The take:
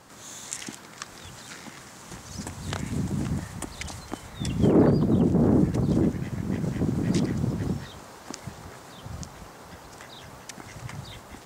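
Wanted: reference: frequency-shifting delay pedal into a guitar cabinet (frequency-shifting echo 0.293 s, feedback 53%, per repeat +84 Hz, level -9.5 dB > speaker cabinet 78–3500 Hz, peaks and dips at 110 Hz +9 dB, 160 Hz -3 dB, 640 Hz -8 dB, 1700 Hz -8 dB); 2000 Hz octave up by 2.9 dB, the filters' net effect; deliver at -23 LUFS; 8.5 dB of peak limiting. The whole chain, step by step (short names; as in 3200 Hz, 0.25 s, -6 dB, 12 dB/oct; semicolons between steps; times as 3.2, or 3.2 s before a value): bell 2000 Hz +8 dB; limiter -16.5 dBFS; frequency-shifting echo 0.293 s, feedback 53%, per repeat +84 Hz, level -9.5 dB; speaker cabinet 78–3500 Hz, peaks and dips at 110 Hz +9 dB, 160 Hz -3 dB, 640 Hz -8 dB, 1700 Hz -8 dB; gain +5.5 dB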